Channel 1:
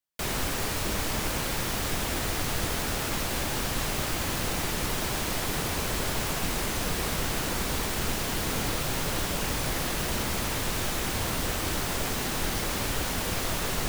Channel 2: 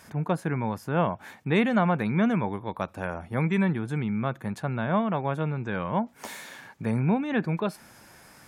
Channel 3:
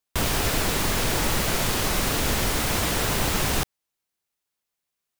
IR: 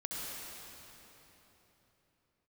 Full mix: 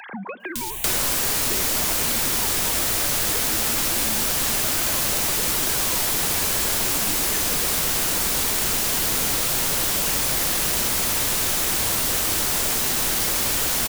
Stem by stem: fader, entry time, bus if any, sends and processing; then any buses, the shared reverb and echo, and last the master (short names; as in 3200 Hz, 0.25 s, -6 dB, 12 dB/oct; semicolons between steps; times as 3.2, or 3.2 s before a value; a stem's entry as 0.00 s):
+2.5 dB, 0.65 s, no send, low shelf 210 Hz -6 dB
-0.5 dB, 0.00 s, send -22.5 dB, sine-wave speech; HPF 270 Hz 12 dB/oct; compressor, threshold -37 dBFS, peak gain reduction 17.5 dB
-9.5 dB, 0.40 s, no send, step phaser 3.3 Hz 210–5700 Hz; auto duck -11 dB, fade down 0.65 s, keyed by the second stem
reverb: on, RT60 3.8 s, pre-delay 60 ms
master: high shelf 4500 Hz +11.5 dB; three-band squash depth 70%